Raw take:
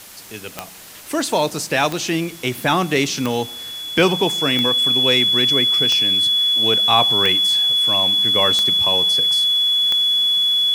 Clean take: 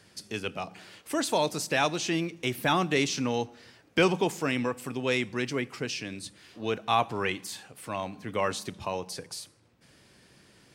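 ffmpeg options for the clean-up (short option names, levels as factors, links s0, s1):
-af "adeclick=t=4,bandreject=f=3400:w=30,afwtdn=0.011,asetnsamples=n=441:p=0,asendcmd='0.95 volume volume -7.5dB',volume=1"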